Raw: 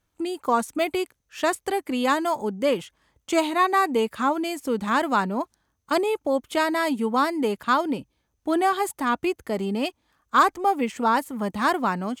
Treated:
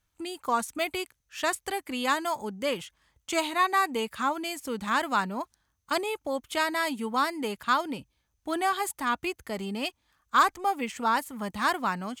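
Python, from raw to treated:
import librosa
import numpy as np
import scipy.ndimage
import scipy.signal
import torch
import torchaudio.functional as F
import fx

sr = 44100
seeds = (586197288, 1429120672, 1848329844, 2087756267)

y = fx.peak_eq(x, sr, hz=360.0, db=-9.0, octaves=2.7)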